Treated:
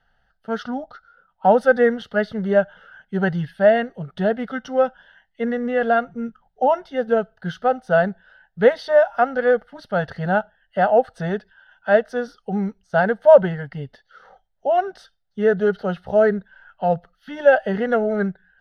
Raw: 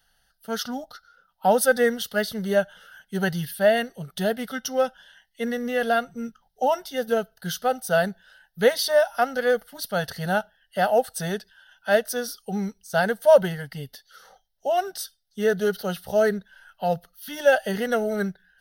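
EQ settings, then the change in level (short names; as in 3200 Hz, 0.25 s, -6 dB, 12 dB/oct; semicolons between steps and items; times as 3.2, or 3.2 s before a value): LPF 1800 Hz 12 dB/oct; +4.5 dB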